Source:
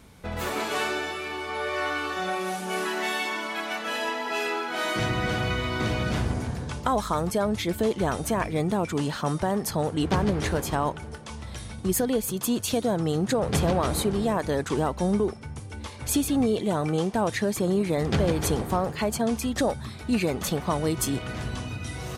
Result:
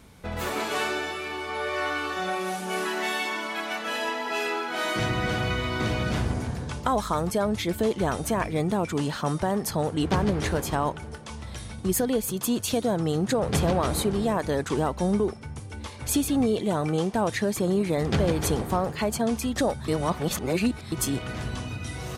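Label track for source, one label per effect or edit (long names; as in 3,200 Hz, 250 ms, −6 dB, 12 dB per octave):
19.880000	20.920000	reverse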